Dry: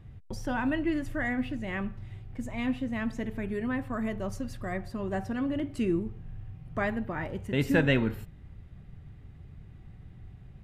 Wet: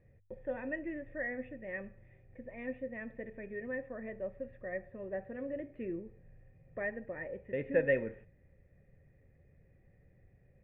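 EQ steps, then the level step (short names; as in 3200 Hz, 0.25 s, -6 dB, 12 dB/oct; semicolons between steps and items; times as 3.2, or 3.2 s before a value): vocal tract filter e; notches 50/100 Hz; +4.0 dB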